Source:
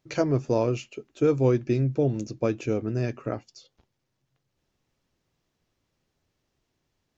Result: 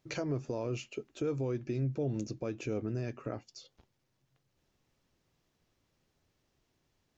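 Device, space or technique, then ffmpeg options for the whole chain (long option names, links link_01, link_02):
stacked limiters: -af "alimiter=limit=-15.5dB:level=0:latency=1:release=208,alimiter=limit=-18.5dB:level=0:latency=1,alimiter=level_in=1.5dB:limit=-24dB:level=0:latency=1:release=348,volume=-1.5dB"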